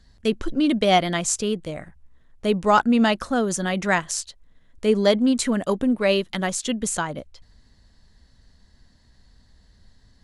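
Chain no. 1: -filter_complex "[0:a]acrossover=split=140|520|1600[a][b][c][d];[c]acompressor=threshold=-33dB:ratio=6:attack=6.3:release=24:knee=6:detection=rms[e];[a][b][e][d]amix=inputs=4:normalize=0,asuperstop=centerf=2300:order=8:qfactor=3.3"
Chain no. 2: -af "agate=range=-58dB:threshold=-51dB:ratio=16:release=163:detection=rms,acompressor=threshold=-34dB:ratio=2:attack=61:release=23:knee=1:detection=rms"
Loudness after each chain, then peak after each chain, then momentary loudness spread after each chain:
-23.5, -28.5 LUFS; -9.0, -10.5 dBFS; 9, 8 LU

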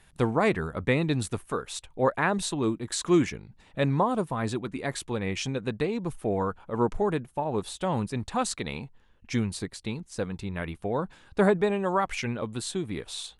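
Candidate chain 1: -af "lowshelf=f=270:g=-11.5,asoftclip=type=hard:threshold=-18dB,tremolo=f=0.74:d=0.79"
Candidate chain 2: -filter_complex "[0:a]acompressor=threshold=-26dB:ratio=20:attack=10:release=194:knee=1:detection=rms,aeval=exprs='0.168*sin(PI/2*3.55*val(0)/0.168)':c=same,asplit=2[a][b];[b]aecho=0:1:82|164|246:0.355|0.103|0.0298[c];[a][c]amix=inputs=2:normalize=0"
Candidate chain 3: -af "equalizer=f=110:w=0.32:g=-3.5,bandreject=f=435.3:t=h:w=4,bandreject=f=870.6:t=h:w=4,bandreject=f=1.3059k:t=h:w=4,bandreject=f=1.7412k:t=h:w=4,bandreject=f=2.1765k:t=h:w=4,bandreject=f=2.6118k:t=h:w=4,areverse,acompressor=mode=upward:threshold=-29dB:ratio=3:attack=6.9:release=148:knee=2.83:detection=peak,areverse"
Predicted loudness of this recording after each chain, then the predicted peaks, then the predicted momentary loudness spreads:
-35.5, -21.0, -30.0 LUFS; -18.0, -12.0, -11.0 dBFS; 14, 4, 9 LU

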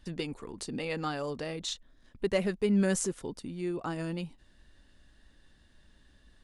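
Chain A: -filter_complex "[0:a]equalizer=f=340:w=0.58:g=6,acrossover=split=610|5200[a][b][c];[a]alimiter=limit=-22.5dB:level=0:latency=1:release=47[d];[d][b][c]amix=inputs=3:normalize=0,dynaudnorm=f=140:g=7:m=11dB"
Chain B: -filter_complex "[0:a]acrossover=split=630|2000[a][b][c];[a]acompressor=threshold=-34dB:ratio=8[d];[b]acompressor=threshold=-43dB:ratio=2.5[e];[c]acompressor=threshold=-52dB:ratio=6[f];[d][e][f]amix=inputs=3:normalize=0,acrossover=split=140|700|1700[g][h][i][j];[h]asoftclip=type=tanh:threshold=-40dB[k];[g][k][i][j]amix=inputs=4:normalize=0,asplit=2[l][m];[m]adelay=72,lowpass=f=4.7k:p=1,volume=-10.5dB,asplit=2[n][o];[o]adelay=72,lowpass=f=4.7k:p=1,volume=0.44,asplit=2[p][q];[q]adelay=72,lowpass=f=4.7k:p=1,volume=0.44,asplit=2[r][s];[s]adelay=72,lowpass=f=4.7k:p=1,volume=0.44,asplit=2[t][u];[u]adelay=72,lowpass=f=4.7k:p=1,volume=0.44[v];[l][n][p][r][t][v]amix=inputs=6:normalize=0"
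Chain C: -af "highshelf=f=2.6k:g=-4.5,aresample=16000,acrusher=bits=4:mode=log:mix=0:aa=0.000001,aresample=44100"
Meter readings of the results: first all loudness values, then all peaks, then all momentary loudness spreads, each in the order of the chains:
-21.0, -41.5, -33.5 LUFS; -4.5, -27.0, -14.0 dBFS; 12, 9, 13 LU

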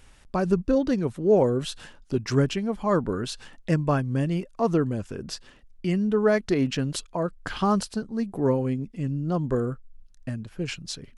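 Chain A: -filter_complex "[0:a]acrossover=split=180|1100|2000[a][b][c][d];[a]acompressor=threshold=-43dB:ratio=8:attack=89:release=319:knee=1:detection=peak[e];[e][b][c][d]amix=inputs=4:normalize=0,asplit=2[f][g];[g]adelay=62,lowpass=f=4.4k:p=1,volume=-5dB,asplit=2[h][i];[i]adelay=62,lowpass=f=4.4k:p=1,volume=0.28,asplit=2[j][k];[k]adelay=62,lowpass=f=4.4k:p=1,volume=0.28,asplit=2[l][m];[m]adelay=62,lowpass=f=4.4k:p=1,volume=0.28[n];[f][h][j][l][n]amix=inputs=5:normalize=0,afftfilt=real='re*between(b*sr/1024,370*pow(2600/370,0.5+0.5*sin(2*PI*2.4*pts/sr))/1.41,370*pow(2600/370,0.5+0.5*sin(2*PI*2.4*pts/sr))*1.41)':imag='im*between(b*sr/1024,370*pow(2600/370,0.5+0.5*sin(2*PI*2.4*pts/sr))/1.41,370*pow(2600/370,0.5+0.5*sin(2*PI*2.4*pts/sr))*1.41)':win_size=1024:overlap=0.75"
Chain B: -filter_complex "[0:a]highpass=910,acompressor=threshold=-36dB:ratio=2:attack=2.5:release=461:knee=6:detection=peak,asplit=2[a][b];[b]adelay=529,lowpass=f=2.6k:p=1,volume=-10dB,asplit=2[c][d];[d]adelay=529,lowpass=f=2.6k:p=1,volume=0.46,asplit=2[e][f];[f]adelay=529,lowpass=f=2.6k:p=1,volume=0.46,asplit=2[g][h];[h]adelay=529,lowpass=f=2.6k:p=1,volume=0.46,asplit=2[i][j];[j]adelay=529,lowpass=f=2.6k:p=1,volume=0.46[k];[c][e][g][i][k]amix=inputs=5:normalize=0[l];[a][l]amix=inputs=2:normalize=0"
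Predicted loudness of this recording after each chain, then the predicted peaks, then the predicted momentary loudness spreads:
-33.5, -41.0 LUFS; -15.0, -22.0 dBFS; 20, 9 LU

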